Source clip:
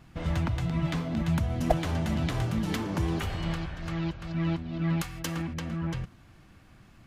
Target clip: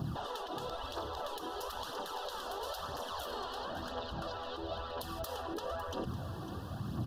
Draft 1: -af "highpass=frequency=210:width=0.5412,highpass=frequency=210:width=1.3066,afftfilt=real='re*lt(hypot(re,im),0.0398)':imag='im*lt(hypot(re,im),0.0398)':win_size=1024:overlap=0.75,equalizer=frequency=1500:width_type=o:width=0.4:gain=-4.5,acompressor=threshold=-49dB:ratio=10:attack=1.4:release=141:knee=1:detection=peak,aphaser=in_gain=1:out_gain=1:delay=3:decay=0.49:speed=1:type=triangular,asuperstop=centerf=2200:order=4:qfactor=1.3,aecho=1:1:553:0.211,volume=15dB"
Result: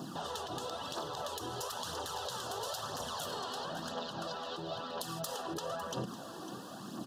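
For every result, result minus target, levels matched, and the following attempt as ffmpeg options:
8,000 Hz band +7.5 dB; 125 Hz band −6.0 dB
-af "highpass=frequency=210:width=0.5412,highpass=frequency=210:width=1.3066,afftfilt=real='re*lt(hypot(re,im),0.0398)':imag='im*lt(hypot(re,im),0.0398)':win_size=1024:overlap=0.75,equalizer=frequency=1500:width_type=o:width=0.4:gain=-4.5,acompressor=threshold=-49dB:ratio=10:attack=1.4:release=141:knee=1:detection=peak,equalizer=frequency=7500:width_type=o:width=1.1:gain=-11,aphaser=in_gain=1:out_gain=1:delay=3:decay=0.49:speed=1:type=triangular,asuperstop=centerf=2200:order=4:qfactor=1.3,aecho=1:1:553:0.211,volume=15dB"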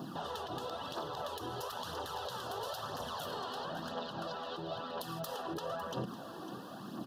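125 Hz band −5.0 dB
-af "highpass=frequency=80:width=0.5412,highpass=frequency=80:width=1.3066,afftfilt=real='re*lt(hypot(re,im),0.0398)':imag='im*lt(hypot(re,im),0.0398)':win_size=1024:overlap=0.75,equalizer=frequency=1500:width_type=o:width=0.4:gain=-4.5,acompressor=threshold=-49dB:ratio=10:attack=1.4:release=141:knee=1:detection=peak,equalizer=frequency=7500:width_type=o:width=1.1:gain=-11,aphaser=in_gain=1:out_gain=1:delay=3:decay=0.49:speed=1:type=triangular,asuperstop=centerf=2200:order=4:qfactor=1.3,aecho=1:1:553:0.211,volume=15dB"

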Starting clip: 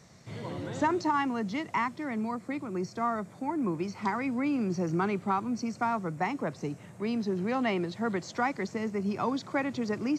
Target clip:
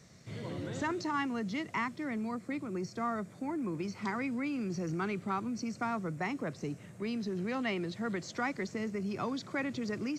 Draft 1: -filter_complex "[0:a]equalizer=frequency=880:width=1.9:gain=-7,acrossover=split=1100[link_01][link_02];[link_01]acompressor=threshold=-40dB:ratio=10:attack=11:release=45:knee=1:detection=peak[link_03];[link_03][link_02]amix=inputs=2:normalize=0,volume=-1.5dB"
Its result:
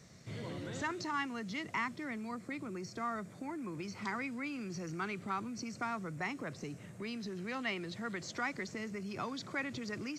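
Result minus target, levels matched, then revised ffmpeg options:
downward compressor: peak gain reduction +7 dB
-filter_complex "[0:a]equalizer=frequency=880:width=1.9:gain=-7,acrossover=split=1100[link_01][link_02];[link_01]acompressor=threshold=-32.5dB:ratio=10:attack=11:release=45:knee=1:detection=peak[link_03];[link_03][link_02]amix=inputs=2:normalize=0,volume=-1.5dB"

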